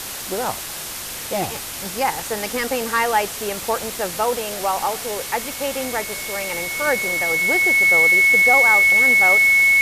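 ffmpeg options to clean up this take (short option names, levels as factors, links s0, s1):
-af "bandreject=f=2200:w=30,afwtdn=0.035"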